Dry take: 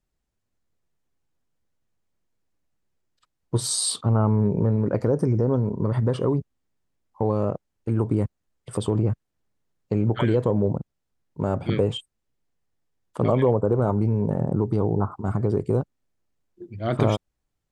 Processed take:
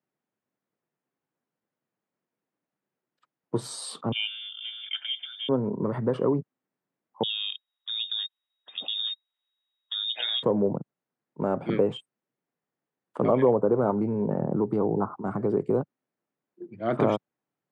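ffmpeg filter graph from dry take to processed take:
-filter_complex "[0:a]asettb=1/sr,asplit=3[s0][s1][s2];[s0]atrim=end=4.124[s3];[s1]atrim=start=4.12:end=5.49,asetpts=PTS-STARTPTS,afade=t=in:d=0.004:c=qsin,afade=t=out:st=1.366:d=0.004:c=qsin,highpass=390,aecho=1:1:1.4:0.97,atrim=end_sample=60417,lowpass=f=3100:t=q:w=0.5098,lowpass=f=3100:t=q:w=0.6013,lowpass=f=3100:t=q:w=0.9,lowpass=f=3100:t=q:w=2.563,afreqshift=-3700[s4];[s2]atrim=start=5.486[s5];[s3][s4]acrossfade=d=0.004:c1=hsin:c2=qsin[s6];[s6][s5]acrossfade=d=0.004:c1=qsin:c2=hsin,asettb=1/sr,asplit=3[s7][s8][s9];[s7]atrim=end=7.234[s10];[s8]atrim=start=7.23:end=10.43,asetpts=PTS-STARTPTS,afade=t=in:d=0.004:c=qsin,afade=t=out:st=3.196:d=0.004:c=qsin,bandreject=f=1500:w=7.4,lowpass=f=3200:t=q:w=0.5098,lowpass=f=3200:t=q:w=0.6013,lowpass=f=3200:t=q:w=0.9,lowpass=f=3200:t=q:w=2.563,afreqshift=-3800[s11];[s9]atrim=start=10.426[s12];[s10][s11]acrossfade=d=0.004:c1=hsin:c2=qsin[s13];[s13][s12]acrossfade=d=0.004:c1=qsin:c2=hsin,highpass=f=120:w=0.5412,highpass=f=120:w=1.3066,acrossover=split=160 2500:gain=0.251 1 0.2[s14][s15][s16];[s14][s15][s16]amix=inputs=3:normalize=0"

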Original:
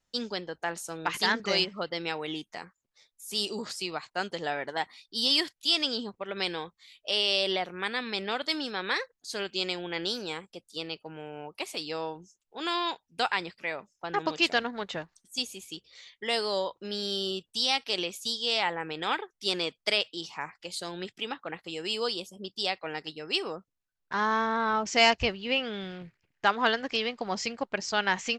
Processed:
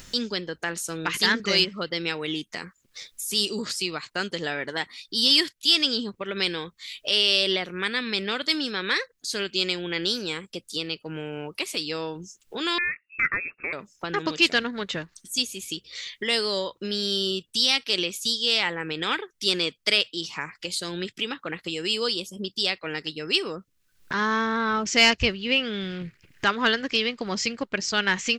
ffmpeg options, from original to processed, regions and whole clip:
-filter_complex "[0:a]asettb=1/sr,asplit=3[s0][s1][s2];[s0]atrim=end=12.784[s3];[s1]atrim=start=12.78:end=13.73,asetpts=PTS-STARTPTS,afade=t=in:d=0.004:c=qsin,afade=t=out:st=0.946:d=0.004:c=qsin,equalizer=f=1900:t=o:w=0.32:g=-14.5,lowpass=f=2400:t=q:w=0.5098,lowpass=f=2400:t=q:w=0.6013,lowpass=f=2400:t=q:w=0.9,lowpass=f=2400:t=q:w=2.563,afreqshift=-2800[s4];[s2]atrim=start=13.726[s5];[s3][s4]acrossfade=d=0.004:c1=hsin:c2=qsin[s6];[s6][s5]acrossfade=d=0.004:c1=qsin:c2=hsin,acontrast=69,equalizer=f=770:t=o:w=0.94:g=-11.5,acompressor=mode=upward:threshold=0.0501:ratio=2.5"

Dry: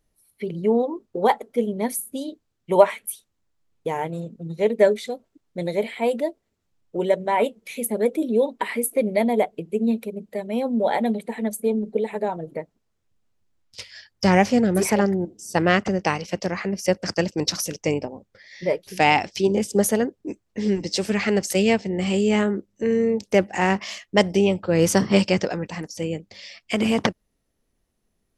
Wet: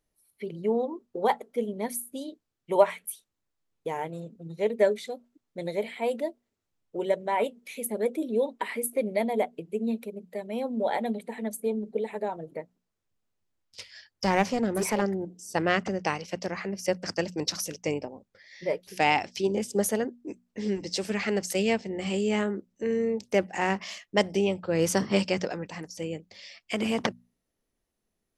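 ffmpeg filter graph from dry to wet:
-filter_complex "[0:a]asettb=1/sr,asplit=3[s0][s1][s2];[s0]atrim=end=14.244[s3];[s1]atrim=start=14.24:end=15.02,asetpts=PTS-STARTPTS,afade=t=in:d=0.004:c=qsin,afade=t=out:st=0.776:d=0.004:c=qsin,highpass=f=46:p=1,equalizer=f=1000:w=4.3:g=4,aeval=exprs='clip(val(0),-1,0.133)':c=same[s4];[s2]atrim=start=15.016[s5];[s3][s4]acrossfade=d=0.004:c1=hsin:c2=qsin[s6];[s6][s5]acrossfade=d=0.004:c1=qsin:c2=hsin,lowshelf=f=150:g=-5.5,bandreject=f=60:t=h:w=6,bandreject=f=120:t=h:w=6,bandreject=f=180:t=h:w=6,bandreject=f=240:t=h:w=6,volume=0.531"

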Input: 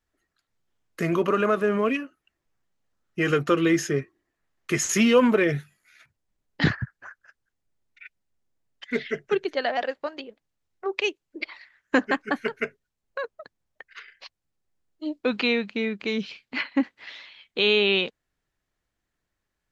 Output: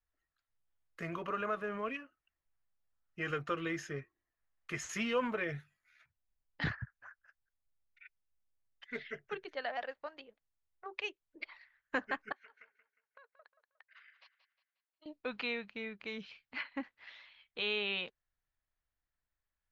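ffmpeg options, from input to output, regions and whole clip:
-filter_complex "[0:a]asettb=1/sr,asplit=3[s0][s1][s2];[s0]atrim=end=12.324[s3];[s1]atrim=start=12.32:end=15.06,asetpts=PTS-STARTPTS,afade=t=in:d=0.004:c=qsin,afade=t=out:st=2.736:d=0.004:c=qsin,highpass=680,lowpass=4900,acompressor=threshold=0.00708:ratio=16:attack=3.2:release=140:knee=1:detection=peak,aecho=1:1:179|358|537|716:0.251|0.0955|0.0363|0.0138,atrim=end_sample=120834[s4];[s2]atrim=start=15.056[s5];[s3][s4]acrossfade=d=0.004:c1=hsin:c2=qsin[s6];[s6][s5]acrossfade=d=0.004:c1=qsin:c2=hsin,lowpass=f=1400:p=1,equalizer=f=270:w=0.47:g=-13.5,bandreject=f=380:w=12,volume=0.562"

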